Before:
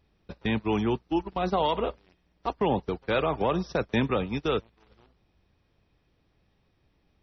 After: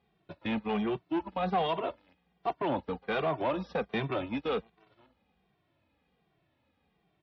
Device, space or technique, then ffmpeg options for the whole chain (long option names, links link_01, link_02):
barber-pole flanger into a guitar amplifier: -filter_complex "[0:a]asplit=2[link_01][link_02];[link_02]adelay=2.1,afreqshift=-1.3[link_03];[link_01][link_03]amix=inputs=2:normalize=1,asoftclip=type=tanh:threshold=-25.5dB,highpass=110,equalizer=frequency=110:width_type=q:width=4:gain=-6,equalizer=frequency=400:width_type=q:width=4:gain=-3,equalizer=frequency=740:width_type=q:width=4:gain=4,lowpass=frequency=3900:width=0.5412,lowpass=frequency=3900:width=1.3066,volume=1.5dB"